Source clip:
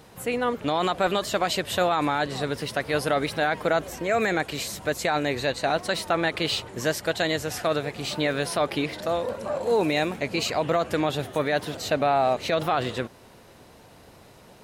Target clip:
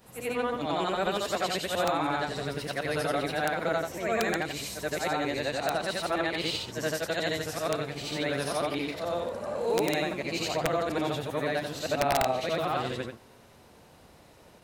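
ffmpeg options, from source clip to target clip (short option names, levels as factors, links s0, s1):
-af "afftfilt=real='re':imag='-im':win_size=8192:overlap=0.75,aeval=exprs='(mod(6.31*val(0)+1,2)-1)/6.31':c=same"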